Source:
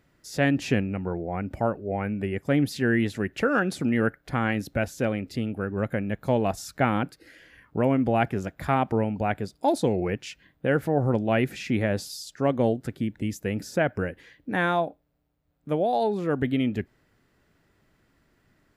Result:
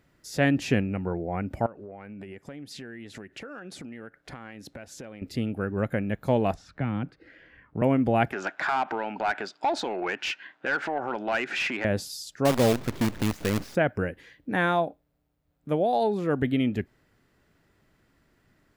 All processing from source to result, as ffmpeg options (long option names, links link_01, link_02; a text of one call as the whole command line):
ffmpeg -i in.wav -filter_complex "[0:a]asettb=1/sr,asplit=3[link_01][link_02][link_03];[link_01]atrim=end=1.664[link_04];[link_02]atrim=start=1.66:end=5.22,asetpts=PTS-STARTPTS,afade=type=in:duration=0.004:curve=qsin,afade=type=out:start_time=3.556:duration=0.004:curve=qsin,lowpass=9500,lowshelf=frequency=130:gain=-10,acompressor=threshold=-37dB:ratio=12:attack=3.2:release=140:knee=1:detection=peak[link_05];[link_03]atrim=start=5.216[link_06];[link_04][link_05]acrossfade=duration=0.004:curve1=hsin:curve2=qsin[link_07];[link_07][link_06]acrossfade=duration=0.004:curve1=qsin:curve2=hsin,asettb=1/sr,asplit=3[link_08][link_09][link_10];[link_08]atrim=end=6.544[link_11];[link_09]atrim=start=6.54:end=7.82,asetpts=PTS-STARTPTS,afade=type=in:duration=0.004:curve=qsin,afade=type=out:start_time=1.276:duration=0.004:curve=qsin,lowpass=2400,acrossover=split=250|3000[link_12][link_13][link_14];[link_13]acompressor=threshold=-40dB:ratio=2.5:attack=3.2:release=140:knee=2.83:detection=peak[link_15];[link_12][link_15][link_14]amix=inputs=3:normalize=0[link_16];[link_10]atrim=start=7.816[link_17];[link_11][link_16]acrossfade=duration=0.004:curve1=hsin:curve2=qsin[link_18];[link_18][link_17]acrossfade=duration=0.004:curve1=qsin:curve2=hsin,asettb=1/sr,asplit=3[link_19][link_20][link_21];[link_19]atrim=end=8.324[link_22];[link_20]atrim=start=8.32:end=11.85,asetpts=PTS-STARTPTS,afade=type=in:duration=0.004:curve=qsin,afade=type=out:start_time=3.526:duration=0.004:curve=qsin,acompressor=threshold=-27dB:ratio=6:attack=3.2:release=140:knee=1:detection=peak,highpass=330,equalizer=frequency=490:width_type=q:width=4:gain=-8,equalizer=frequency=880:width_type=q:width=4:gain=4,equalizer=frequency=1500:width_type=q:width=4:gain=8,equalizer=frequency=2700:width_type=q:width=4:gain=4,lowpass=frequency=7100:width=0.5412,lowpass=frequency=7100:width=1.3066,asplit=2[link_23][link_24];[link_24]highpass=frequency=720:poles=1,volume=18dB,asoftclip=type=tanh:threshold=-15dB[link_25];[link_23][link_25]amix=inputs=2:normalize=0,lowpass=frequency=2600:poles=1,volume=-6dB[link_26];[link_21]atrim=start=11.846[link_27];[link_22][link_26]acrossfade=duration=0.004:curve1=hsin:curve2=qsin[link_28];[link_28][link_27]acrossfade=duration=0.004:curve1=qsin:curve2=hsin,asettb=1/sr,asplit=3[link_29][link_30][link_31];[link_29]atrim=end=12.454[link_32];[link_30]atrim=start=12.45:end=13.75,asetpts=PTS-STARTPTS,afade=type=in:duration=0.004:curve=qsin,afade=type=out:start_time=1.296:duration=0.004:curve=qsin,aeval=exprs='val(0)+0.5*0.0282*sgn(val(0))':channel_layout=same,lowpass=3200,acrusher=bits=5:dc=4:mix=0:aa=0.000001[link_33];[link_31]atrim=start=13.746[link_34];[link_32][link_33]acrossfade=duration=0.004:curve1=hsin:curve2=qsin[link_35];[link_35][link_34]acrossfade=duration=0.004:curve1=qsin:curve2=hsin" out.wav